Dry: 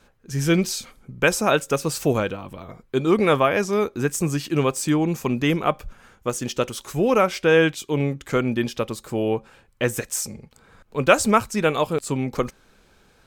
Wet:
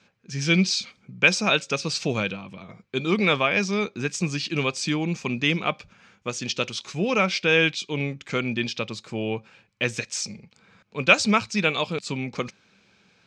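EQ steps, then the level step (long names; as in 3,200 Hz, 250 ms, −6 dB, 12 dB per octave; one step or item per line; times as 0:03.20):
dynamic equaliser 4,200 Hz, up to +7 dB, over −44 dBFS, Q 1.4
loudspeaker in its box 110–5,900 Hz, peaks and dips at 110 Hz +7 dB, 190 Hz +10 dB, 2,400 Hz +8 dB
high-shelf EQ 2,700 Hz +10 dB
−7.0 dB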